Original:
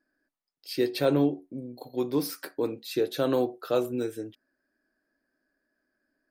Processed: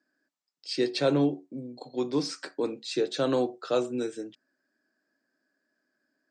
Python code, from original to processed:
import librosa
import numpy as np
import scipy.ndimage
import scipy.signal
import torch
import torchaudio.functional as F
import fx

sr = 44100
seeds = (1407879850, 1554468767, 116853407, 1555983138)

y = scipy.signal.sosfilt(scipy.signal.cheby1(5, 1.0, [130.0, 7900.0], 'bandpass', fs=sr, output='sos'), x)
y = fx.high_shelf(y, sr, hz=4100.0, db=7.0)